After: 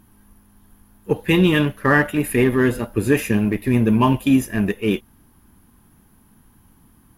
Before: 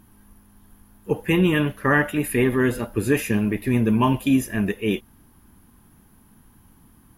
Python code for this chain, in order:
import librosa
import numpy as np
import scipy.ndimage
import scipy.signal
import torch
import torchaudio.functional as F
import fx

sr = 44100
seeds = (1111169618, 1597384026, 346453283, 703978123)

p1 = fx.peak_eq(x, sr, hz=3900.0, db=11.5, octaves=0.38, at=(1.13, 1.66))
p2 = fx.backlash(p1, sr, play_db=-23.5)
y = p1 + (p2 * librosa.db_to_amplitude(-7.0))